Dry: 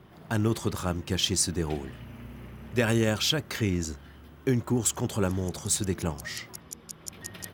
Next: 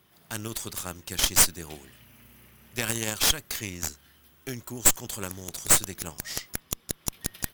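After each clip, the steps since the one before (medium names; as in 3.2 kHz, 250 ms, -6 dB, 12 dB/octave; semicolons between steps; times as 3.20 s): pre-emphasis filter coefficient 0.9; Chebyshev shaper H 4 -11 dB, 8 -17 dB, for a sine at -12.5 dBFS; trim +6 dB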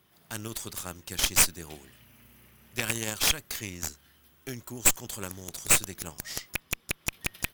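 rattle on loud lows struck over -33 dBFS, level -9 dBFS; trim -2.5 dB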